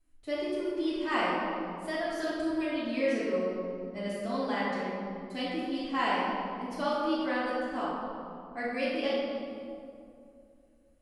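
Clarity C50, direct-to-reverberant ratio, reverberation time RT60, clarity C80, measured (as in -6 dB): -3.5 dB, -14.0 dB, 2.5 s, -0.5 dB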